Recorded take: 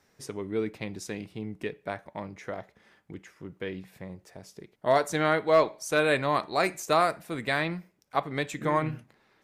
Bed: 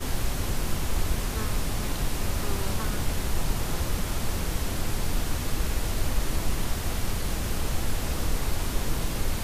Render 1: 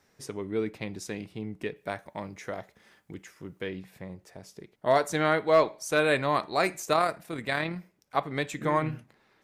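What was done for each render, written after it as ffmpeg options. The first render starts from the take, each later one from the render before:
-filter_complex "[0:a]asettb=1/sr,asplit=3[a][b][c];[a]atrim=end=1.764[d];[b]atrim=start=1.76:end=3.67,asetpts=PTS-STARTPTS,afade=t=in:d=0.004:c=qsin,afade=t=out:st=1.906:d=0.004:c=qsin,highshelf=f=5k:g=9[e];[c]atrim=start=3.666[f];[d][e]acrossfade=d=0.004:c1=hsin:c2=qsin[g];[g][f]acrossfade=d=0.004:c1=qsin:c2=hsin,asettb=1/sr,asplit=3[h][i][j];[h]atrim=end=6.934[k];[i]atrim=start=6.93:end=7.76,asetpts=PTS-STARTPTS,afade=t=in:d=0.004:c=qsin,afade=t=out:st=0.826:d=0.004:c=qsin,tremolo=f=37:d=0.4[l];[j]atrim=start=7.756[m];[k][l]acrossfade=d=0.004:c1=hsin:c2=qsin[n];[n][m]acrossfade=d=0.004:c1=qsin:c2=hsin"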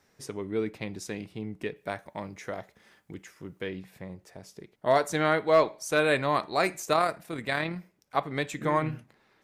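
-af anull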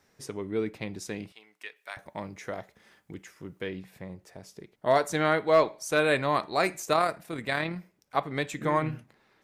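-filter_complex "[0:a]asettb=1/sr,asplit=3[a][b][c];[a]atrim=end=1.324[d];[b]atrim=start=1.32:end=1.97,asetpts=PTS-STARTPTS,afade=t=in:d=0.004:c=qsin,afade=t=out:st=0.646:d=0.004:c=qsin,highpass=1.3k[e];[c]atrim=start=1.966[f];[d][e]acrossfade=d=0.004:c1=hsin:c2=qsin[g];[g][f]acrossfade=d=0.004:c1=qsin:c2=hsin"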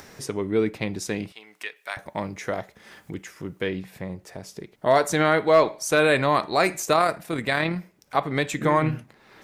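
-filter_complex "[0:a]asplit=2[a][b];[b]alimiter=limit=-19.5dB:level=0:latency=1:release=67,volume=3dB[c];[a][c]amix=inputs=2:normalize=0,acompressor=mode=upward:threshold=-36dB:ratio=2.5"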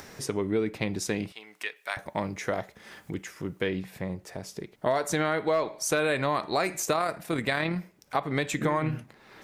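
-af "acompressor=threshold=-23dB:ratio=5"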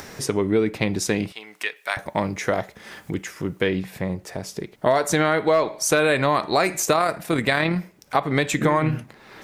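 -af "volume=7dB"

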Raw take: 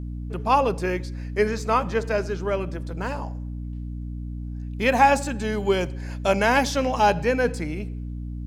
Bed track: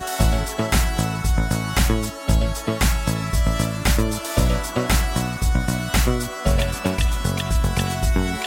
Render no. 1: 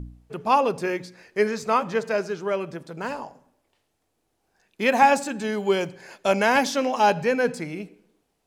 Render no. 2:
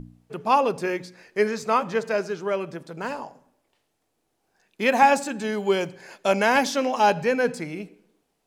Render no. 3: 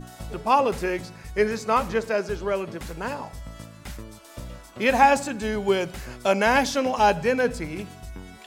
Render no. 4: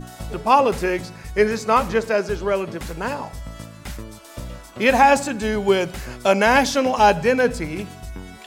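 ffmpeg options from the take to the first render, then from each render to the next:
-af "bandreject=f=60:t=h:w=4,bandreject=f=120:t=h:w=4,bandreject=f=180:t=h:w=4,bandreject=f=240:t=h:w=4,bandreject=f=300:t=h:w=4"
-af "equalizer=f=63:t=o:w=0.74:g=-12.5"
-filter_complex "[1:a]volume=-19.5dB[a];[0:a][a]amix=inputs=2:normalize=0"
-af "volume=4.5dB,alimiter=limit=-3dB:level=0:latency=1"

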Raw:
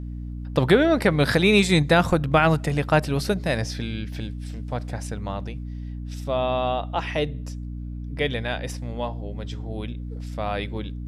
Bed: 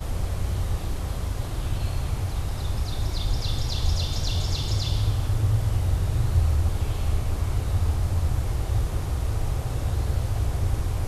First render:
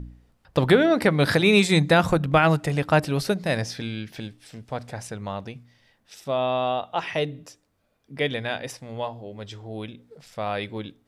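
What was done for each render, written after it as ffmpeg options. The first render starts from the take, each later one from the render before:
-af "bandreject=f=60:t=h:w=4,bandreject=f=120:t=h:w=4,bandreject=f=180:t=h:w=4,bandreject=f=240:t=h:w=4,bandreject=f=300:t=h:w=4"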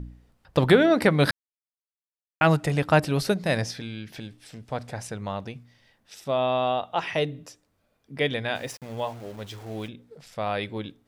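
-filter_complex "[0:a]asettb=1/sr,asplit=3[a][b][c];[a]atrim=end=3.714[d];[b]atrim=start=3.71:end=4.68,asetpts=PTS-STARTPTS,afade=t=in:d=0.004:c=qsin,afade=t=out:st=0.966:d=0.004:c=qsin,acompressor=threshold=-38dB:ratio=1.5:attack=3.2:release=140:knee=1:detection=peak[e];[c]atrim=start=4.676[f];[d][e]acrossfade=d=0.004:c1=hsin:c2=qsin[g];[g][f]acrossfade=d=0.004:c1=qsin:c2=hsin,asplit=3[h][i][j];[h]afade=t=out:st=8.54:d=0.02[k];[i]aeval=exprs='val(0)*gte(abs(val(0)),0.00668)':c=same,afade=t=in:st=8.54:d=0.02,afade=t=out:st=9.87:d=0.02[l];[j]afade=t=in:st=9.87:d=0.02[m];[k][l][m]amix=inputs=3:normalize=0,asplit=3[n][o][p];[n]atrim=end=1.31,asetpts=PTS-STARTPTS,afade=t=out:st=1.306:d=0.004:c=hsin[q];[o]atrim=start=1.31:end=2.41,asetpts=PTS-STARTPTS,volume=0[r];[p]atrim=start=2.41,asetpts=PTS-STARTPTS,afade=t=in:d=0.004:c=hsin[s];[q][r][s]concat=n=3:v=0:a=1"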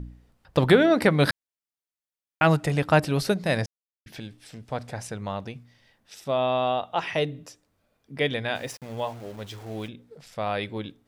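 -filter_complex "[0:a]asplit=3[a][b][c];[a]atrim=end=3.66,asetpts=PTS-STARTPTS,afade=t=out:st=3.656:d=0.004:c=hsin[d];[b]atrim=start=3.66:end=4.06,asetpts=PTS-STARTPTS,volume=0[e];[c]atrim=start=4.06,asetpts=PTS-STARTPTS,afade=t=in:d=0.004:c=hsin[f];[d][e][f]concat=n=3:v=0:a=1"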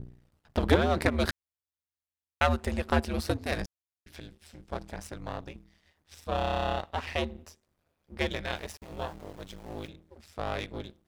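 -af "aeval=exprs='if(lt(val(0),0),0.251*val(0),val(0))':c=same,aeval=exprs='val(0)*sin(2*PI*80*n/s)':c=same"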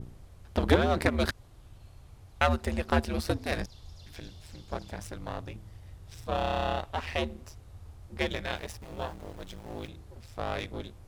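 -filter_complex "[1:a]volume=-24.5dB[a];[0:a][a]amix=inputs=2:normalize=0"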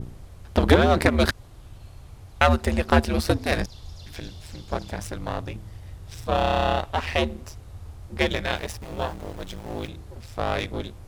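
-af "volume=7.5dB,alimiter=limit=-1dB:level=0:latency=1"

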